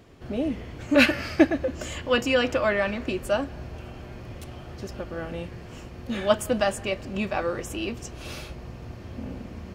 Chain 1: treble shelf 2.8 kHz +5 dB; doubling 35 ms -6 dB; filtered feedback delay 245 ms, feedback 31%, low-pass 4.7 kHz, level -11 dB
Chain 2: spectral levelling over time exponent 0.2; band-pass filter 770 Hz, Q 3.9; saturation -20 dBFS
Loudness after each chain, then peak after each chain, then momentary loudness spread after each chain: -24.0 LUFS, -27.0 LUFS; -2.5 dBFS, -20.0 dBFS; 19 LU, 2 LU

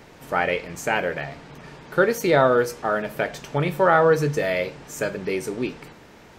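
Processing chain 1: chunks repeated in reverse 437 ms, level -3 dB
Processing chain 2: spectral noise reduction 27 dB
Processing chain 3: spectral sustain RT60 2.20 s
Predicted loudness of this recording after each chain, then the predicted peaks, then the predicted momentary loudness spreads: -21.5 LUFS, -23.5 LUFS, -18.0 LUFS; -2.0 dBFS, -5.0 dBFS, -1.0 dBFS; 11 LU, 13 LU, 14 LU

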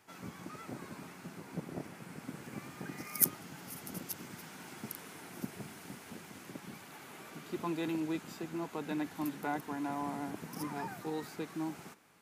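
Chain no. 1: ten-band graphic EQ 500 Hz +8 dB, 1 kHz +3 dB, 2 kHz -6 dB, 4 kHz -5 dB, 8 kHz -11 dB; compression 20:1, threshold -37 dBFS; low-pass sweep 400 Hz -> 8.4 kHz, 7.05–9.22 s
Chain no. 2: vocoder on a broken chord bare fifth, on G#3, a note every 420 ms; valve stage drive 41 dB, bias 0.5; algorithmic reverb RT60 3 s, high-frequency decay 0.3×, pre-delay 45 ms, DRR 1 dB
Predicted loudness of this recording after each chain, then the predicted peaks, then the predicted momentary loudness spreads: -43.0 LUFS, -45.0 LUFS; -25.0 dBFS, -30.0 dBFS; 6 LU, 9 LU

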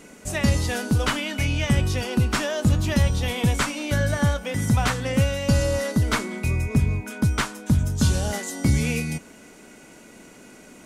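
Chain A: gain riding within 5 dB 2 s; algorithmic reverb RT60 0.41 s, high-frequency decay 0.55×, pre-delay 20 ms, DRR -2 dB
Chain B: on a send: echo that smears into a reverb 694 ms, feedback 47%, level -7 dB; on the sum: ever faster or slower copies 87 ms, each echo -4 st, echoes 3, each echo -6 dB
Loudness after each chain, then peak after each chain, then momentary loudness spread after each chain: -20.5 LUFS, -22.0 LUFS; -5.0 dBFS, -7.0 dBFS; 4 LU, 6 LU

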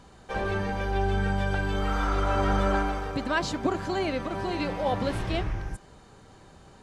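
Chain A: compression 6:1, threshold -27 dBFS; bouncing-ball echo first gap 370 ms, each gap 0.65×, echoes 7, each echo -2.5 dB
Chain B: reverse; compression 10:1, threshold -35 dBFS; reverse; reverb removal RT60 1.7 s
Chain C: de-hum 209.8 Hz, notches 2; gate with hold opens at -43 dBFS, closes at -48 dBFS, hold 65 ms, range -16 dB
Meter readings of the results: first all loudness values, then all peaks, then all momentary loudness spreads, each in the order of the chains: -29.5 LUFS, -42.5 LUFS, -28.5 LUFS; -14.0 dBFS, -27.0 dBFS, -14.0 dBFS; 6 LU, 14 LU, 7 LU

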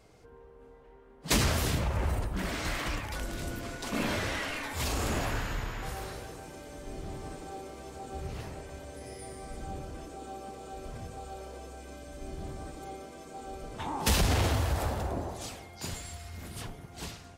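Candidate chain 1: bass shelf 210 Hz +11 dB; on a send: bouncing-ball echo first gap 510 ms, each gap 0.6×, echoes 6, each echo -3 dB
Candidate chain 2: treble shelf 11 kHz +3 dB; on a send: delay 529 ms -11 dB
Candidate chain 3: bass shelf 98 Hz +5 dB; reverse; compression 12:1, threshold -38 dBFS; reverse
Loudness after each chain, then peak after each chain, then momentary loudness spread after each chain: -26.0 LUFS, -34.0 LUFS, -43.5 LUFS; -7.0 dBFS, -15.0 dBFS, -28.5 dBFS; 16 LU, 16 LU, 4 LU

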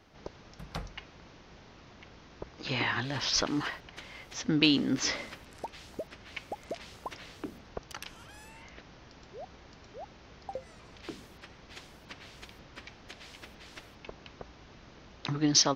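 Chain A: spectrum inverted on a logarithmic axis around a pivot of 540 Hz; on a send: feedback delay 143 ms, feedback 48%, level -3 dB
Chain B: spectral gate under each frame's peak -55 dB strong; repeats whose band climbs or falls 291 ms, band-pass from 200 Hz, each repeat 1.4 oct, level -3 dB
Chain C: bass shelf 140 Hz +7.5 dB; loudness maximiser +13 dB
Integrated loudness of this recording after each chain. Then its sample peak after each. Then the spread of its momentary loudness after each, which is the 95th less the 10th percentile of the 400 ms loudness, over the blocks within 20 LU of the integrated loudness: -32.0 LUFS, -32.5 LUFS, -19.5 LUFS; -8.0 dBFS, -8.0 dBFS, -1.0 dBFS; 21 LU, 23 LU, 23 LU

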